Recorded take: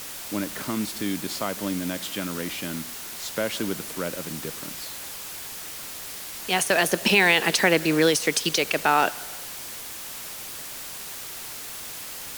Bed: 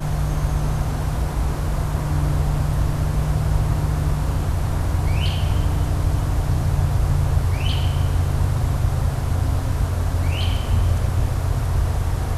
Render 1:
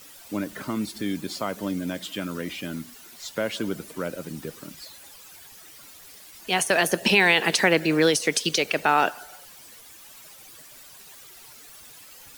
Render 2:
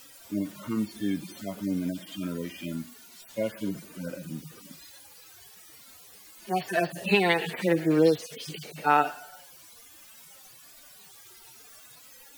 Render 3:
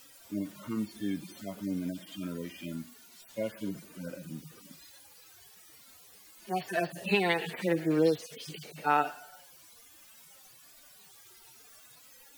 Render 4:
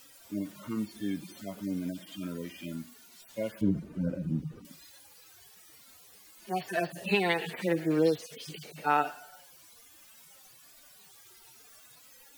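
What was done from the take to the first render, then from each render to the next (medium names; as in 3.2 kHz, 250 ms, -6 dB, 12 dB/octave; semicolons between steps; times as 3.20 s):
noise reduction 13 dB, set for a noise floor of -37 dBFS
harmonic-percussive separation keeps harmonic
trim -4.5 dB
3.61–4.65 s: tilt EQ -4.5 dB/octave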